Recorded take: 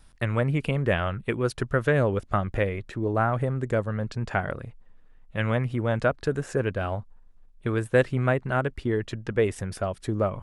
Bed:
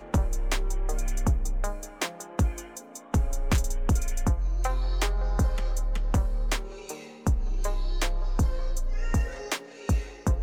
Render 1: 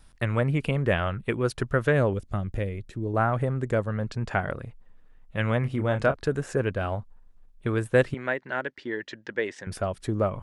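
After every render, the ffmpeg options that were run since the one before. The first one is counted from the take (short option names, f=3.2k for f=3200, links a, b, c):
-filter_complex "[0:a]asettb=1/sr,asplit=3[a][b][c];[a]atrim=end=2.134[d];[b]atrim=start=2.13:end=3.14,asetpts=PTS-STARTPTS,afade=t=in:d=0.004:c=qsin,afade=t=out:st=1.006:d=0.004:c=qsin,equalizer=f=1.2k:w=0.42:g=-11.5[e];[c]atrim=start=3.136[f];[d][e]acrossfade=d=0.004:c1=hsin:c2=qsin[g];[g][f]acrossfade=d=0.004:c1=qsin:c2=hsin,asettb=1/sr,asplit=3[h][i][j];[h]atrim=end=5.604[k];[i]atrim=start=5.6:end=6.16,asetpts=PTS-STARTPTS,afade=t=in:d=0.004:c=qsin,afade=t=out:st=0.556:d=0.004:c=qsin,asplit=2[l][m];[m]adelay=29,volume=-9dB[n];[l][n]amix=inputs=2:normalize=0,atrim=end_sample=24696[o];[j]atrim=start=6.156[p];[k][o]acrossfade=d=0.004:c1=hsin:c2=qsin[q];[q][p]acrossfade=d=0.004:c1=qsin:c2=hsin,asettb=1/sr,asplit=3[r][s][t];[r]atrim=end=8.144[u];[s]atrim=start=8.14:end=9.67,asetpts=PTS-STARTPTS,afade=t=in:d=0.004:c=qsin,afade=t=out:st=1.526:d=0.004:c=qsin,highpass=370,equalizer=f=440:t=q:w=4:g=-5,equalizer=f=710:t=q:w=4:g=-7,equalizer=f=1.2k:t=q:w=4:g=-9,equalizer=f=1.8k:t=q:w=4:g=6,equalizer=f=2.6k:t=q:w=4:g=-3,lowpass=f=6.2k:w=0.5412,lowpass=f=6.2k:w=1.3066[v];[t]atrim=start=9.666[w];[u][v]acrossfade=d=0.004:c1=hsin:c2=qsin[x];[x][w]acrossfade=d=0.004:c1=qsin:c2=hsin"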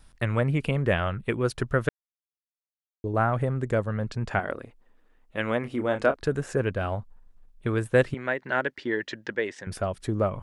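-filter_complex "[0:a]asettb=1/sr,asplit=3[a][b][c];[a]atrim=end=4.394[d];[b]atrim=start=4.39:end=6.2,asetpts=PTS-STARTPTS,afade=t=in:d=0.004:c=qsin,afade=t=out:st=1.806:d=0.004:c=qsin,lowshelf=f=200:t=q:w=1.5:g=-9[e];[c]atrim=start=6.196[f];[d][e]acrossfade=d=0.004:c1=hsin:c2=qsin[g];[g][f]acrossfade=d=0.004:c1=qsin:c2=hsin,asplit=5[h][i][j][k][l];[h]atrim=end=1.89,asetpts=PTS-STARTPTS,afade=t=out:st=1.886:d=0.004:c=hsin[m];[i]atrim=start=1.89:end=3.04,asetpts=PTS-STARTPTS,volume=0[n];[j]atrim=start=3.04:end=8.392,asetpts=PTS-STARTPTS,afade=t=in:d=0.004:c=hsin[o];[k]atrim=start=8.388:end=9.352,asetpts=PTS-STARTPTS,volume=4dB[p];[l]atrim=start=9.348[q];[m][n][o]concat=n=3:v=0:a=1[r];[r][p]acrossfade=d=0.004:c1=hsin:c2=hsin[s];[s][q]acrossfade=d=0.004:c1=hsin:c2=hsin"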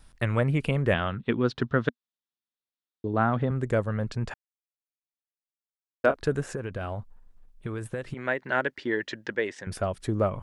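-filter_complex "[0:a]asettb=1/sr,asplit=3[a][b][c];[a]atrim=end=0.944[d];[b]atrim=start=0.94:end=3.51,asetpts=PTS-STARTPTS,afade=t=in:d=0.004:c=qsin,afade=t=out:st=2.566:d=0.004:c=qsin,highpass=100,equalizer=f=240:t=q:w=4:g=7,equalizer=f=580:t=q:w=4:g=-4,equalizer=f=2.3k:t=q:w=4:g=-4,equalizer=f=3.6k:t=q:w=4:g=6,lowpass=f=5k:w=0.5412,lowpass=f=5k:w=1.3066[e];[c]atrim=start=3.506[f];[d][e]acrossfade=d=0.004:c1=hsin:c2=qsin[g];[g][f]acrossfade=d=0.004:c1=qsin:c2=hsin,asettb=1/sr,asplit=3[h][i][j];[h]atrim=end=6.544[k];[i]atrim=start=6.54:end=8.23,asetpts=PTS-STARTPTS,afade=t=in:d=0.004:c=qsin,afade=t=out:st=1.686:d=0.004:c=qsin,acompressor=threshold=-28dB:ratio=12:attack=3.2:release=140:knee=1:detection=peak[l];[j]atrim=start=8.226[m];[k][l]acrossfade=d=0.004:c1=hsin:c2=qsin[n];[n][m]acrossfade=d=0.004:c1=qsin:c2=hsin,asplit=3[o][p][q];[o]atrim=end=4.34,asetpts=PTS-STARTPTS,afade=t=out:st=4.336:d=0.004:c=hsin[r];[p]atrim=start=4.34:end=6.04,asetpts=PTS-STARTPTS,volume=0[s];[q]atrim=start=6.04,asetpts=PTS-STARTPTS,afade=t=in:d=0.004:c=hsin[t];[r][s][t]concat=n=3:v=0:a=1"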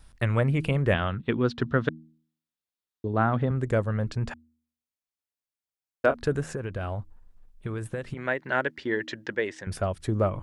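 -af "equalizer=f=64:t=o:w=1.3:g=5.5,bandreject=f=79.16:t=h:w=4,bandreject=f=158.32:t=h:w=4,bandreject=f=237.48:t=h:w=4,bandreject=f=316.64:t=h:w=4"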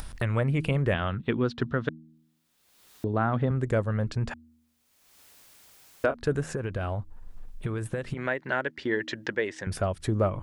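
-af "acompressor=mode=upward:threshold=-26dB:ratio=2.5,alimiter=limit=-14dB:level=0:latency=1:release=245"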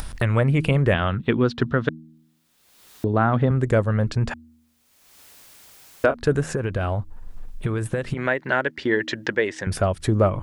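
-af "volume=6.5dB"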